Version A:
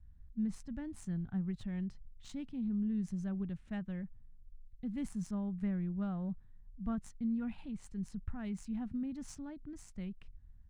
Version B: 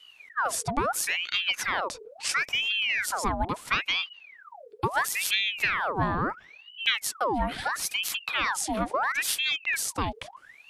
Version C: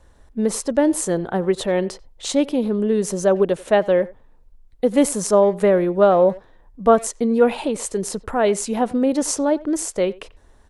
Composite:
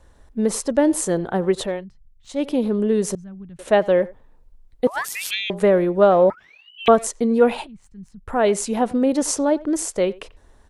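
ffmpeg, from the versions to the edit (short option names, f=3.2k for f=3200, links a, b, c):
-filter_complex "[0:a]asplit=3[a][b][c];[1:a]asplit=2[d][e];[2:a]asplit=6[f][g][h][i][j][k];[f]atrim=end=1.85[l];[a]atrim=start=1.61:end=2.5[m];[g]atrim=start=2.26:end=3.152[n];[b]atrim=start=3.148:end=3.592[o];[h]atrim=start=3.588:end=4.872[p];[d]atrim=start=4.868:end=5.502[q];[i]atrim=start=5.498:end=6.302[r];[e]atrim=start=6.298:end=6.882[s];[j]atrim=start=6.878:end=7.67[t];[c]atrim=start=7.61:end=8.32[u];[k]atrim=start=8.26[v];[l][m]acrossfade=d=0.24:c1=tri:c2=tri[w];[w][n]acrossfade=d=0.24:c1=tri:c2=tri[x];[x][o]acrossfade=d=0.004:c1=hsin:c2=hsin[y];[y][p]acrossfade=d=0.004:c1=hsin:c2=hsin[z];[z][q]acrossfade=d=0.004:c1=hsin:c2=hsin[aa];[aa][r]acrossfade=d=0.004:c1=hsin:c2=hsin[ab];[ab][s]acrossfade=d=0.004:c1=hsin:c2=hsin[ac];[ac][t]acrossfade=d=0.004:c1=hsin:c2=hsin[ad];[ad][u]acrossfade=d=0.06:c1=tri:c2=tri[ae];[ae][v]acrossfade=d=0.06:c1=tri:c2=tri"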